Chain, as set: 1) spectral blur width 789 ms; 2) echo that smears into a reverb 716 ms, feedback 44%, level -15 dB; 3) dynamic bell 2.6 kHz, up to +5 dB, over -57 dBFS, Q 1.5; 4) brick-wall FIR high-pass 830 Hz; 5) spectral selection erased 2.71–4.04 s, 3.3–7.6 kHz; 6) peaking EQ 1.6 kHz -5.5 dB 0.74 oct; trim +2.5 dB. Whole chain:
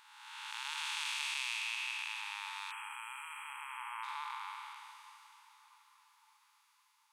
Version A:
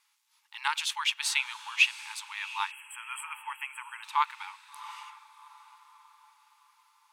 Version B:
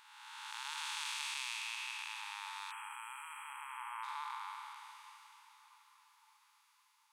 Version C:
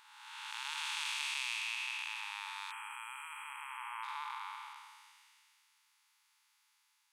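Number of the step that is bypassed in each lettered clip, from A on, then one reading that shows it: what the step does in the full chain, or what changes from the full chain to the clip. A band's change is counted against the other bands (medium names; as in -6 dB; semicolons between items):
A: 1, crest factor change +4.0 dB; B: 3, momentary loudness spread change +3 LU; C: 2, momentary loudness spread change -2 LU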